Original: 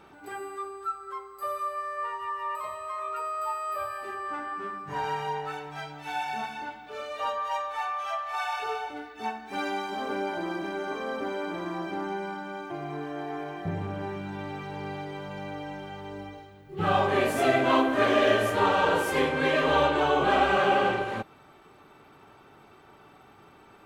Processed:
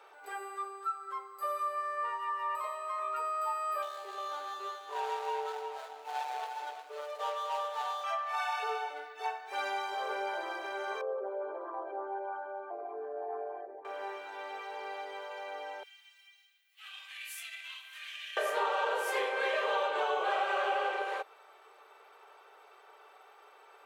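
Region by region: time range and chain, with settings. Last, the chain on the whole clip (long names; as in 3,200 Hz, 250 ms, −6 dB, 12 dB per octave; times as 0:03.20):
0:03.82–0:08.04: running median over 25 samples + single-tap delay 357 ms −8 dB
0:11.01–0:13.85: spectral envelope exaggerated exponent 2 + low-pass filter 2,300 Hz
0:15.83–0:18.37: high-shelf EQ 8,300 Hz +12 dB + downward compressor, threshold −23 dBFS + four-pole ladder high-pass 2,100 Hz, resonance 40%
whole clip: elliptic high-pass filter 440 Hz, stop band 60 dB; downward compressor 4 to 1, threshold −27 dBFS; level −1.5 dB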